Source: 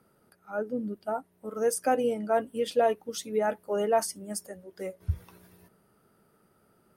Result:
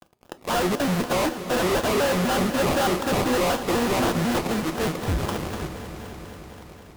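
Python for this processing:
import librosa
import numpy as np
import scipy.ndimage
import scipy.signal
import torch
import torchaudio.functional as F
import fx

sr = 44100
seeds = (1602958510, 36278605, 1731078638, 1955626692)

y = fx.dispersion(x, sr, late='lows', ms=66.0, hz=1500.0, at=(0.74, 1.76))
y = fx.band_shelf(y, sr, hz=610.0, db=-15.5, octaves=1.2, at=(3.71, 4.95))
y = fx.sample_hold(y, sr, seeds[0], rate_hz=1900.0, jitter_pct=20)
y = fx.fuzz(y, sr, gain_db=52.0, gate_db=-59.0)
y = fx.echo_swell(y, sr, ms=96, loudest=5, wet_db=-17.5)
y = fx.rev_fdn(y, sr, rt60_s=0.4, lf_ratio=1.0, hf_ratio=0.9, size_ms=20.0, drr_db=11.0)
y = fx.vibrato_shape(y, sr, shape='square', rate_hz=4.0, depth_cents=250.0)
y = y * librosa.db_to_amplitude(-8.5)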